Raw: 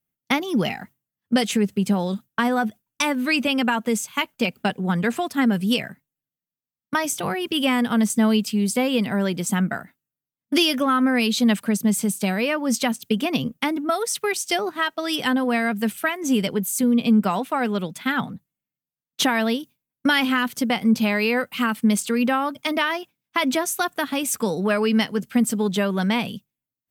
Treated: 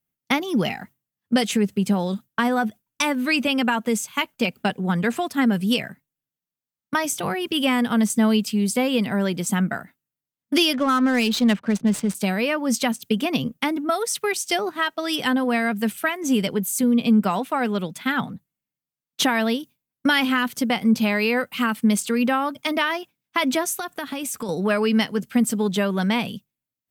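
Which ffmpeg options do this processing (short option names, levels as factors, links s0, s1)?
-filter_complex "[0:a]asettb=1/sr,asplit=3[s0][s1][s2];[s0]atrim=end=10.734[s3];[s1]atrim=start=10.73:end=12.15,asetpts=PTS-STARTPTS,afade=t=in:d=0.004:c=qsin,afade=t=out:st=1.416:d=0.004:c=qsin,adynamicsmooth=sensitivity=6.5:basefreq=1100[s4];[s2]atrim=start=12.146[s5];[s3][s4]acrossfade=d=0.004:c1=hsin:c2=qsin[s6];[s6][s5]acrossfade=d=0.004:c1=qsin:c2=hsin,asettb=1/sr,asplit=3[s7][s8][s9];[s7]atrim=end=23.784[s10];[s8]atrim=start=23.78:end=24.49,asetpts=PTS-STARTPTS,afade=t=in:d=0.004:c=qsin,afade=t=out:st=0.706:d=0.004:c=qsin,acompressor=threshold=0.0562:ratio=6:attack=3.2:release=140:knee=1:detection=peak[s11];[s9]atrim=start=24.486[s12];[s10][s11]acrossfade=d=0.004:c1=hsin:c2=qsin[s13];[s13][s12]acrossfade=d=0.004:c1=qsin:c2=hsin"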